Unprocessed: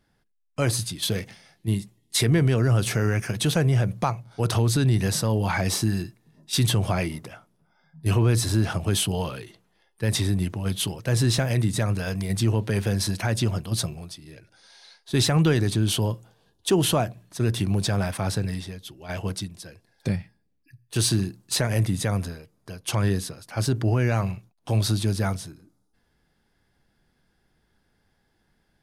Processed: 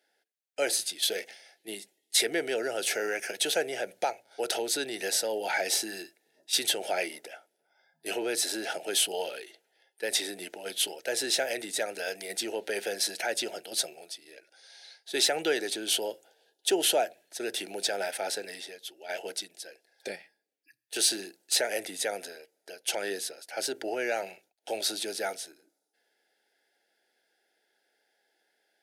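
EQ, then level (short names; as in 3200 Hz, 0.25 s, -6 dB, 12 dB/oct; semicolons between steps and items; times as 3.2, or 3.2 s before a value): HPF 420 Hz 24 dB/oct; Butterworth band-stop 1100 Hz, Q 1.9; 0.0 dB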